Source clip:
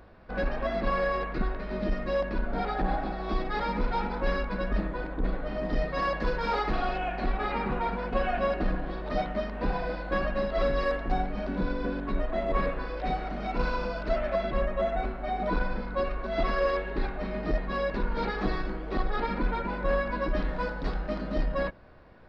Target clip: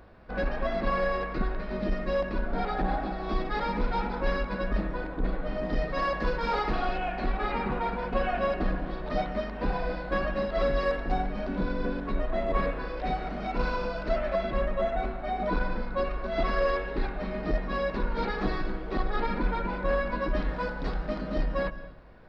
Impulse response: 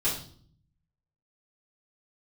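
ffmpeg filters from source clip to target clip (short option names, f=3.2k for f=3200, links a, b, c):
-filter_complex "[0:a]asplit=2[a][b];[1:a]atrim=start_sample=2205,adelay=145[c];[b][c]afir=irnorm=-1:irlink=0,volume=-24.5dB[d];[a][d]amix=inputs=2:normalize=0"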